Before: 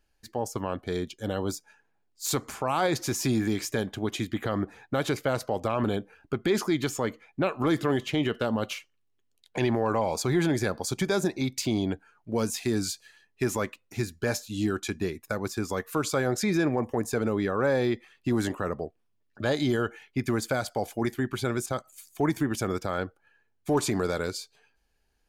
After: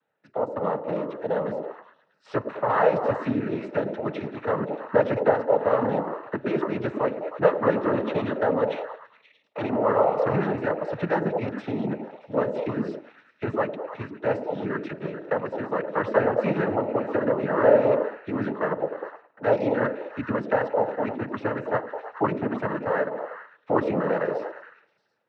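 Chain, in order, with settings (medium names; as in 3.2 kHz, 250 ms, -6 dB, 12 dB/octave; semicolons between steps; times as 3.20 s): cabinet simulation 160–2200 Hz, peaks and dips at 250 Hz -3 dB, 350 Hz -9 dB, 560 Hz +8 dB, 1.2 kHz +4 dB, 1.9 kHz -7 dB; on a send: repeats whose band climbs or falls 105 ms, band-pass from 330 Hz, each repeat 0.7 oct, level -3 dB; on the sum: two-slope reverb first 0.54 s, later 1.8 s, from -16 dB, DRR 20 dB; noise-vocoded speech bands 12; trim +3 dB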